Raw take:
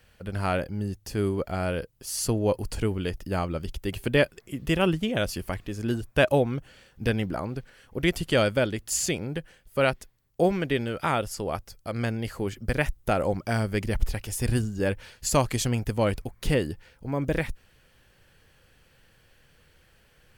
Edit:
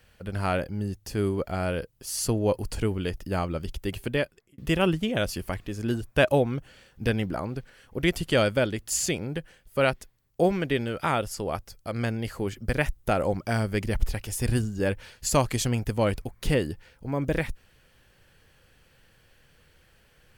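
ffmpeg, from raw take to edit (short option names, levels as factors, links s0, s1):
-filter_complex "[0:a]asplit=2[s0][s1];[s0]atrim=end=4.58,asetpts=PTS-STARTPTS,afade=t=out:st=3.87:d=0.71[s2];[s1]atrim=start=4.58,asetpts=PTS-STARTPTS,afade=t=in:d=0.004:c=hsin[s3];[s2][s3]concat=n=2:v=0:a=1"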